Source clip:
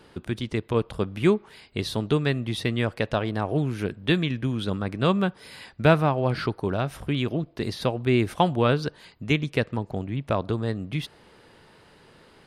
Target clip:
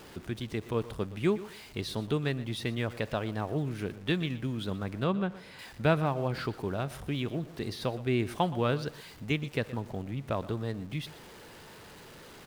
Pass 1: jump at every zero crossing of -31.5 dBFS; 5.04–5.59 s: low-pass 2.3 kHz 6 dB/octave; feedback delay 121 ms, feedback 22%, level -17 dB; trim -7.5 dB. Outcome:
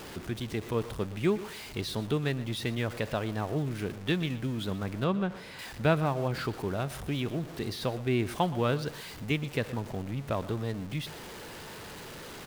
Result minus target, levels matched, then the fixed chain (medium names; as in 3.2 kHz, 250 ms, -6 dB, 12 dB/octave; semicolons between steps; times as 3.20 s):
jump at every zero crossing: distortion +7 dB
jump at every zero crossing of -39 dBFS; 5.04–5.59 s: low-pass 2.3 kHz 6 dB/octave; feedback delay 121 ms, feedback 22%, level -17 dB; trim -7.5 dB